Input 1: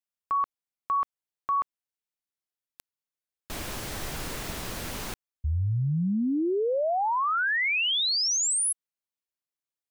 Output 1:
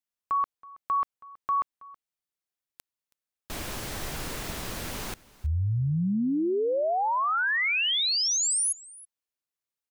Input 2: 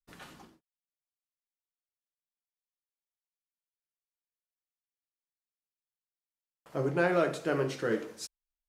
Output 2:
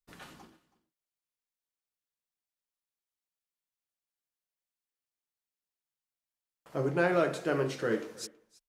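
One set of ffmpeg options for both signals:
-af "aecho=1:1:324:0.0841"

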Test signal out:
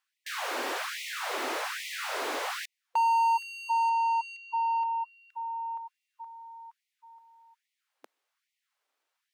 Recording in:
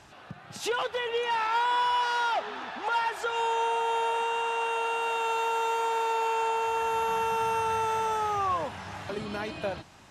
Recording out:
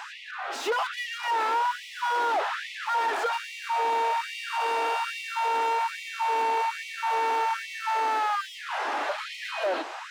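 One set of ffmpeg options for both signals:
-filter_complex "[0:a]asplit=2[a][b];[b]highpass=f=720:p=1,volume=30dB,asoftclip=type=tanh:threshold=-18dB[c];[a][c]amix=inputs=2:normalize=0,lowpass=f=1.2k:p=1,volume=-6dB,afftfilt=real='re*gte(b*sr/1024,220*pow(1900/220,0.5+0.5*sin(2*PI*1.2*pts/sr)))':imag='im*gte(b*sr/1024,220*pow(1900/220,0.5+0.5*sin(2*PI*1.2*pts/sr)))':win_size=1024:overlap=0.75"

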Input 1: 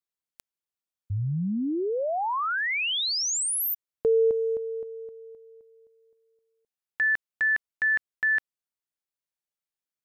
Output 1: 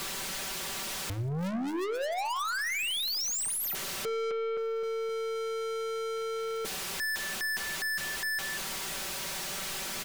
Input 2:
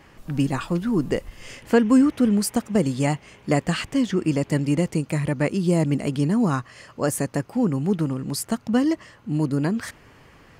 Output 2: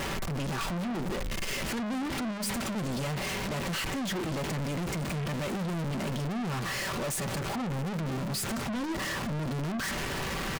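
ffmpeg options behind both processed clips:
-filter_complex "[0:a]aeval=exprs='val(0)+0.5*0.0501*sgn(val(0))':c=same,highshelf=f=9.1k:g=-10.5,aecho=1:1:5.2:0.61,aecho=1:1:189:0.0794,asplit=2[a][b];[b]alimiter=limit=-15dB:level=0:latency=1,volume=-3dB[c];[a][c]amix=inputs=2:normalize=0,aeval=exprs='(tanh(35.5*val(0)+0.1)-tanh(0.1))/35.5':c=same,bandreject=f=101.9:t=h:w=4,bandreject=f=203.8:t=h:w=4,bandreject=f=305.7:t=h:w=4,bandreject=f=407.6:t=h:w=4,bandreject=f=509.5:t=h:w=4,bandreject=f=611.4:t=h:w=4,bandreject=f=713.3:t=h:w=4,bandreject=f=815.2:t=h:w=4,bandreject=f=917.1:t=h:w=4,bandreject=f=1.019k:t=h:w=4,bandreject=f=1.1209k:t=h:w=4,bandreject=f=1.2228k:t=h:w=4,bandreject=f=1.3247k:t=h:w=4,bandreject=f=1.4266k:t=h:w=4,bandreject=f=1.5285k:t=h:w=4,bandreject=f=1.6304k:t=h:w=4,bandreject=f=1.7323k:t=h:w=4,bandreject=f=1.8342k:t=h:w=4,bandreject=f=1.9361k:t=h:w=4,bandreject=f=2.038k:t=h:w=4,bandreject=f=2.1399k:t=h:w=4,bandreject=f=2.2418k:t=h:w=4,bandreject=f=2.3437k:t=h:w=4"

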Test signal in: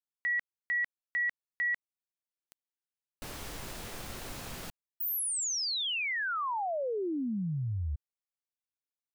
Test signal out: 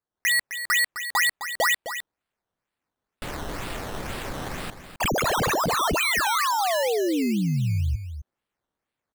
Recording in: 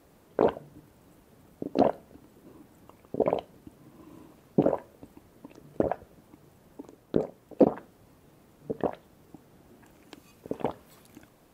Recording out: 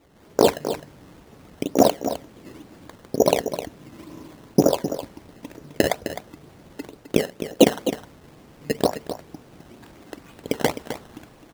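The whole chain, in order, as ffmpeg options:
-af "dynaudnorm=f=120:g=3:m=8dB,acrusher=samples=13:mix=1:aa=0.000001:lfo=1:lforange=13:lforate=2.1,aecho=1:1:259:0.299,volume=1dB"

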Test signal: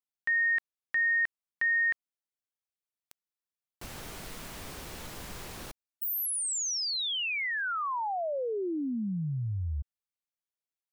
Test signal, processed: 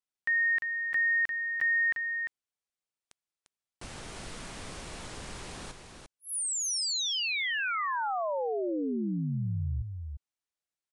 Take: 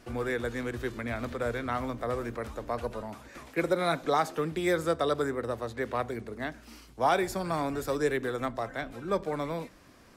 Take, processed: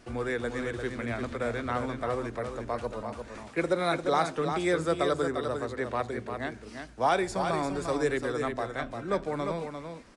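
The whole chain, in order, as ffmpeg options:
-filter_complex "[0:a]asplit=2[a][b];[b]aecho=0:1:348:0.473[c];[a][c]amix=inputs=2:normalize=0,aresample=22050,aresample=44100"

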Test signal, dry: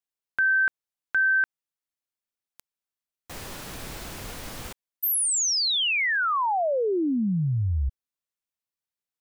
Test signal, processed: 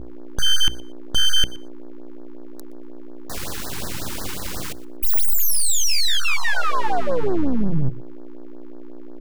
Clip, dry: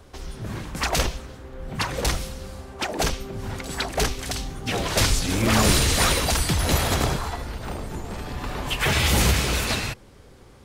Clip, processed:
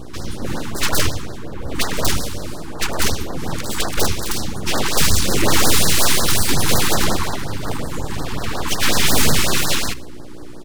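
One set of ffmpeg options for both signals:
-af "aeval=exprs='val(0)+0.0112*(sin(2*PI*60*n/s)+sin(2*PI*2*60*n/s)/2+sin(2*PI*3*60*n/s)/3+sin(2*PI*4*60*n/s)/4+sin(2*PI*5*60*n/s)/5)':c=same,aeval=exprs='abs(val(0))':c=same,bandreject=f=60:t=h:w=6,bandreject=f=120:t=h:w=6,bandreject=f=180:t=h:w=6,aeval=exprs='0.531*sin(PI/2*2*val(0)/0.531)':c=same,aecho=1:1:120|240:0.0891|0.016,afftfilt=real='re*(1-between(b*sr/1024,540*pow(2800/540,0.5+0.5*sin(2*PI*5.5*pts/sr))/1.41,540*pow(2800/540,0.5+0.5*sin(2*PI*5.5*pts/sr))*1.41))':imag='im*(1-between(b*sr/1024,540*pow(2800/540,0.5+0.5*sin(2*PI*5.5*pts/sr))/1.41,540*pow(2800/540,0.5+0.5*sin(2*PI*5.5*pts/sr))*1.41))':win_size=1024:overlap=0.75"

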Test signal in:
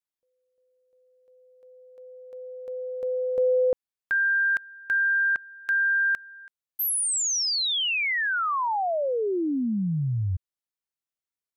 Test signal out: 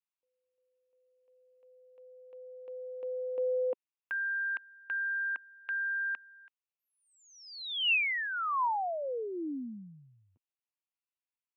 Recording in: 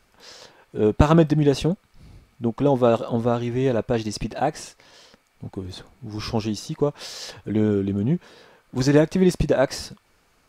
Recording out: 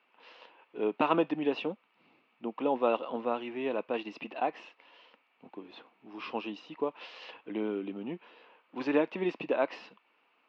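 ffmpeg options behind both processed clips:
-af "highpass=f=280:w=0.5412,highpass=f=280:w=1.3066,equalizer=f=390:t=q:w=4:g=-5,equalizer=f=600:t=q:w=4:g=-3,equalizer=f=990:t=q:w=4:g=5,equalizer=f=1.6k:t=q:w=4:g=-4,equalizer=f=2.7k:t=q:w=4:g=9,lowpass=f=3.1k:w=0.5412,lowpass=f=3.1k:w=1.3066,volume=-7dB"

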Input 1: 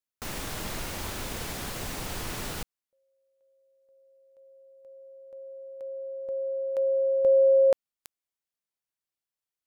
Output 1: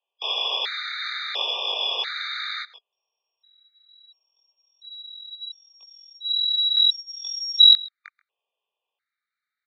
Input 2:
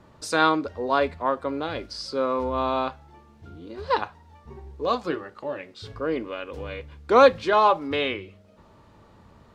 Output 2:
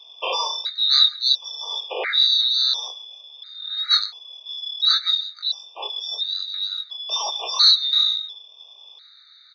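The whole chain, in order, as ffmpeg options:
-filter_complex "[0:a]afftfilt=real='real(if(lt(b,736),b+184*(1-2*mod(floor(b/184),2)),b),0)':imag='imag(if(lt(b,736),b+184*(1-2*mod(floor(b/184),2)),b),0)':win_size=2048:overlap=0.75,flanger=delay=19.5:depth=2.6:speed=1.2,aeval=exprs='val(0)*sin(2*PI*840*n/s)':c=same,asplit=2[a][b];[b]aecho=0:1:133:0.0794[c];[a][c]amix=inputs=2:normalize=0,highpass=f=180:t=q:w=0.5412,highpass=f=180:t=q:w=1.307,lowpass=f=3.4k:t=q:w=0.5176,lowpass=f=3.4k:t=q:w=0.7071,lowpass=f=3.4k:t=q:w=1.932,afreqshift=230,alimiter=level_in=23.5dB:limit=-1dB:release=50:level=0:latency=1,afftfilt=real='re*gt(sin(2*PI*0.72*pts/sr)*(1-2*mod(floor(b*sr/1024/1200),2)),0)':imag='im*gt(sin(2*PI*0.72*pts/sr)*(1-2*mod(floor(b*sr/1024/1200),2)),0)':win_size=1024:overlap=0.75,volume=-1.5dB"

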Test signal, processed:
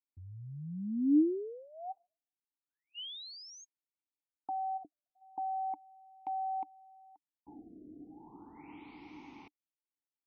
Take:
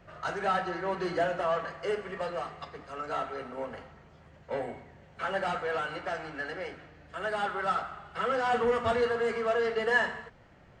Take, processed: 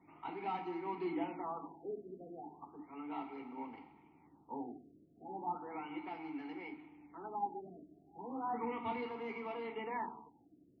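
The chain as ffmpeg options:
-filter_complex "[0:a]asplit=3[a][b][c];[a]bandpass=f=300:t=q:w=8,volume=0dB[d];[b]bandpass=f=870:t=q:w=8,volume=-6dB[e];[c]bandpass=f=2.24k:t=q:w=8,volume=-9dB[f];[d][e][f]amix=inputs=3:normalize=0,afftfilt=real='re*lt(b*sr/1024,680*pow(6700/680,0.5+0.5*sin(2*PI*0.35*pts/sr)))':imag='im*lt(b*sr/1024,680*pow(6700/680,0.5+0.5*sin(2*PI*0.35*pts/sr)))':win_size=1024:overlap=0.75,volume=6dB"

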